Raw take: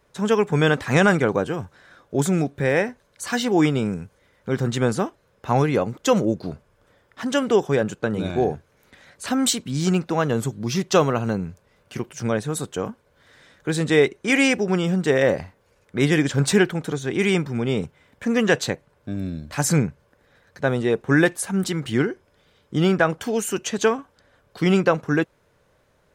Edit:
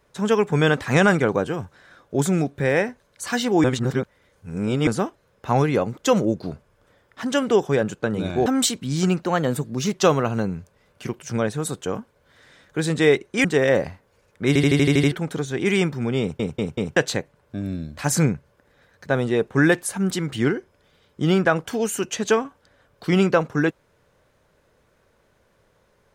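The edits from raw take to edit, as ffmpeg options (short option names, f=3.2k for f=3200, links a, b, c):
-filter_complex "[0:a]asplit=19[a][b][c][d][e][f][g][h][i][j][k][l][m][n][o][p][q][r][s];[a]atrim=end=3.642[t];[b]atrim=start=3.638:end=4.872,asetpts=PTS-STARTPTS,areverse[u];[c]atrim=start=4.868:end=8.462[v];[d]atrim=start=9.298:end=10.064[w];[e]atrim=start=10.06:end=10.85,asetpts=PTS-STARTPTS,asetrate=48069,aresample=44100,atrim=end_sample=31962,asetpts=PTS-STARTPTS[x];[f]atrim=start=10.846:end=14.352[y];[g]atrim=start=14.978:end=16.092[z];[h]atrim=start=16.008:end=16.092[aa];[i]atrim=start=16.008:end=16.092[ab];[j]atrim=start=16.008:end=16.092[ac];[k]atrim=start=16.008:end=16.092[ad];[l]atrim=start=16.008:end=16.092[ae];[m]atrim=start=16.008:end=16.092[af];[n]atrim=start=16.008:end=16.092[ag];[o]atrim=start=16.648:end=17.932[ah];[p]atrim=start=17.738:end=17.932[ai];[q]atrim=start=17.738:end=17.932[aj];[r]atrim=start=17.738:end=17.932[ak];[s]atrim=start=18.498[al];[t][u]acrossfade=d=0.004:c1=hsin:c2=hsin[am];[am][v]acrossfade=d=0.004:c1=hsin:c2=hsin[an];[an][w]acrossfade=d=0.004:c1=hsin:c2=hsin[ao];[ao][x]acrossfade=d=0.004:c1=hsin:c2=hsin[ap];[ap][y]acrossfade=d=0.004:c1=hsin:c2=hsin[aq];[aq][z]acrossfade=d=0.004:c1=hsin:c2=hsin[ar];[ar][aa]acrossfade=d=0.004:c1=hsin:c2=hsin[as];[as][ab]acrossfade=d=0.004:c1=hsin:c2=hsin[at];[at][ac]acrossfade=d=0.004:c1=hsin:c2=hsin[au];[au][ad]acrossfade=d=0.004:c1=hsin:c2=hsin[av];[av][ae]acrossfade=d=0.004:c1=hsin:c2=hsin[aw];[aw][af]acrossfade=d=0.004:c1=hsin:c2=hsin[ax];[ax][ag]acrossfade=d=0.004:c1=hsin:c2=hsin[ay];[ay][ah]acrossfade=d=0.004:c1=hsin:c2=hsin[az];[az][ai]acrossfade=d=0.004:c1=hsin:c2=hsin[ba];[ba][aj]acrossfade=d=0.004:c1=hsin:c2=hsin[bb];[bb][ak]acrossfade=d=0.004:c1=hsin:c2=hsin[bc];[bc][al]acrossfade=d=0.004:c1=hsin:c2=hsin"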